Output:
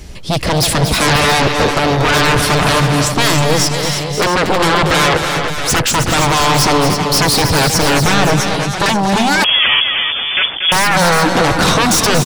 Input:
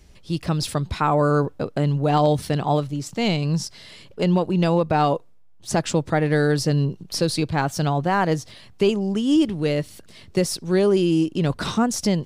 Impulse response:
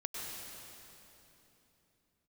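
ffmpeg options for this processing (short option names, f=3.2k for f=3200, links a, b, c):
-filter_complex "[0:a]asettb=1/sr,asplit=3[a][b][c];[a]atrim=end=8.114[d];[b]atrim=start=8.11:end=8.86,asetpts=PTS-STARTPTS,afade=t=in:d=0.004:c=qsin,afade=t=out:st=0.746:d=0.004:c=qsin,acompressor=threshold=-21dB:ratio=3[e];[c]atrim=start=8.856[f];[d][e]acrossfade=d=0.004:c1=hsin:c2=qsin[g];[g][f]acrossfade=d=0.004:c1=qsin:c2=hsin,aeval=exprs='0.422*sin(PI/2*7.08*val(0)/0.422)':c=same,asplit=2[h][i];[i]aecho=0:1:234|318|536|672:0.376|0.422|0.316|0.282[j];[h][j]amix=inputs=2:normalize=0,asettb=1/sr,asplit=3[k][l][m];[k]atrim=end=9.444[n];[l]atrim=start=9.44:end=10.72,asetpts=PTS-STARTPTS,afade=t=in:d=0.004:c=qsin,afade=t=out:st=1.276:d=0.004:c=qsin,lowpass=f=3k:t=q:w=0.5098,lowpass=f=3k:t=q:w=0.6013,lowpass=f=3k:t=q:w=0.9,lowpass=f=3k:t=q:w=2.563,afreqshift=-3500[o];[m]atrim=start=10.716[p];[n][o]acrossfade=d=0.004:c1=hsin:c2=qsin[q];[q][p]acrossfade=d=0.004:c1=qsin:c2=hsin,volume=-2.5dB"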